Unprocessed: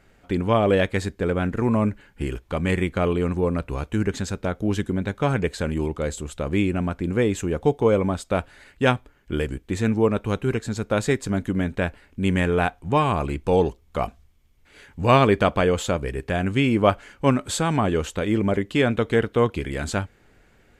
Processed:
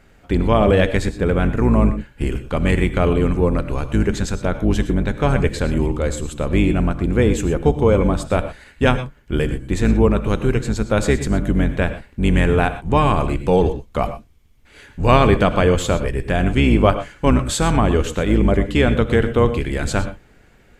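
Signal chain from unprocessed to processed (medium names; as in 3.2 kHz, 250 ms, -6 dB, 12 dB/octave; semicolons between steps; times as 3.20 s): octave divider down 2 oct, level 0 dB; in parallel at -2 dB: peak limiter -10.5 dBFS, peak gain reduction 7 dB; on the sum: gated-style reverb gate 140 ms rising, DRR 11 dB; trim -1 dB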